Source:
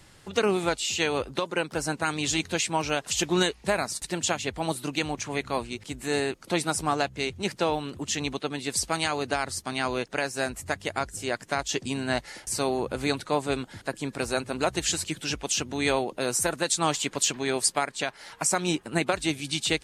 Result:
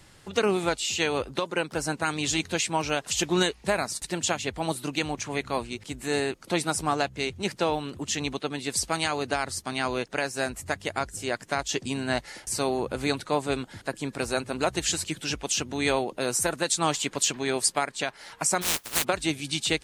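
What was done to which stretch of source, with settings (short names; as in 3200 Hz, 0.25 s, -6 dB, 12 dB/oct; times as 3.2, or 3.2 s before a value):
18.61–19.03 spectral contrast lowered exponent 0.11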